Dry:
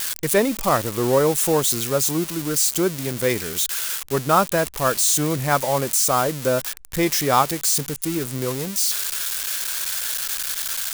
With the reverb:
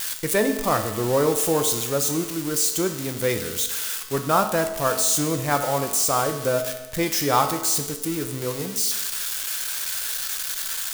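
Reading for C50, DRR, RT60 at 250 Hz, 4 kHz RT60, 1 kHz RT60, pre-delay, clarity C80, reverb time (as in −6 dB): 9.0 dB, 6.0 dB, 1.1 s, 1.0 s, 1.1 s, 5 ms, 10.5 dB, 1.1 s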